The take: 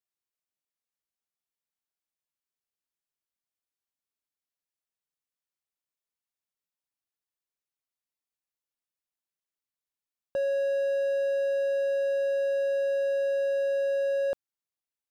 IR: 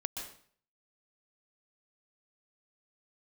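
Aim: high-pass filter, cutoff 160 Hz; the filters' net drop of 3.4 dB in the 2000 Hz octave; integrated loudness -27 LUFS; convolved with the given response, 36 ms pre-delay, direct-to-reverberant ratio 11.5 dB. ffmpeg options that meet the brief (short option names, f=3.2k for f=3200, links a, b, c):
-filter_complex "[0:a]highpass=160,equalizer=f=2k:t=o:g=-4.5,asplit=2[a][b];[1:a]atrim=start_sample=2205,adelay=36[c];[b][c]afir=irnorm=-1:irlink=0,volume=-12.5dB[d];[a][d]amix=inputs=2:normalize=0,volume=-1.5dB"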